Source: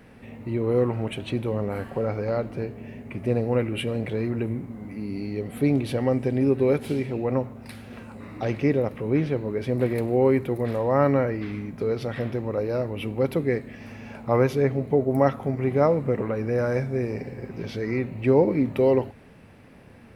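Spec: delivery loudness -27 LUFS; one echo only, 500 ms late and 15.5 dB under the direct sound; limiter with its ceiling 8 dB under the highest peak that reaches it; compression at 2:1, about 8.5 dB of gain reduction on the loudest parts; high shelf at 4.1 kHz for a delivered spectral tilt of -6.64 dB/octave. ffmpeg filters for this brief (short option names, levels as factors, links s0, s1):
-af "highshelf=f=4100:g=-3,acompressor=threshold=0.0316:ratio=2,alimiter=limit=0.0794:level=0:latency=1,aecho=1:1:500:0.168,volume=2"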